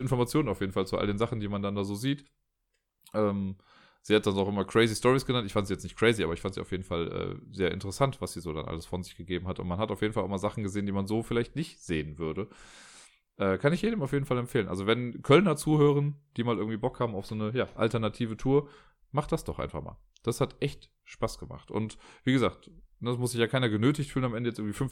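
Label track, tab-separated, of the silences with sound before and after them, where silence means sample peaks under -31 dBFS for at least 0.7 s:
2.150000	3.150000	silence
12.430000	13.410000	silence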